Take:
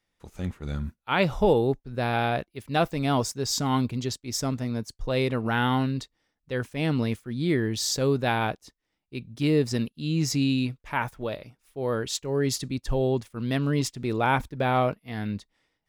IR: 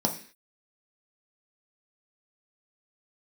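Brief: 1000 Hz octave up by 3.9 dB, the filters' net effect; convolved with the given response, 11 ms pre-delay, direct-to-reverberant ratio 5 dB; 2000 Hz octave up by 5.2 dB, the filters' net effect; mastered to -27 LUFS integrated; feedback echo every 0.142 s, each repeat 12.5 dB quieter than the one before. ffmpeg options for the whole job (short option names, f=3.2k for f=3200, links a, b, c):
-filter_complex "[0:a]equalizer=f=1k:t=o:g=4,equalizer=f=2k:t=o:g=5.5,aecho=1:1:142|284|426:0.237|0.0569|0.0137,asplit=2[a][b];[1:a]atrim=start_sample=2205,adelay=11[c];[b][c]afir=irnorm=-1:irlink=0,volume=-14dB[d];[a][d]amix=inputs=2:normalize=0,volume=-4.5dB"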